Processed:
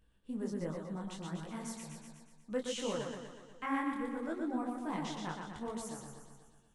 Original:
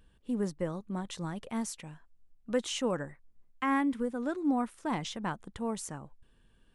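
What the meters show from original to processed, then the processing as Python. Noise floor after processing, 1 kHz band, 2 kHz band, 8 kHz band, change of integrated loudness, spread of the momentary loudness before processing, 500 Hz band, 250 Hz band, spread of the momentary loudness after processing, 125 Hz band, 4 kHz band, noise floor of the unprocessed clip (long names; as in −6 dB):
−67 dBFS, −5.0 dB, −5.0 dB, −5.0 dB, −5.5 dB, 11 LU, −4.5 dB, −5.5 dB, 14 LU, −4.5 dB, −5.0 dB, −65 dBFS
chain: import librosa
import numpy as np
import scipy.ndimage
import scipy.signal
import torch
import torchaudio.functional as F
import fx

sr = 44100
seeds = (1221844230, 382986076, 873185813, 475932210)

p1 = x + fx.echo_feedback(x, sr, ms=121, feedback_pct=59, wet_db=-4.0, dry=0)
p2 = fx.detune_double(p1, sr, cents=48)
y = p2 * librosa.db_to_amplitude(-3.5)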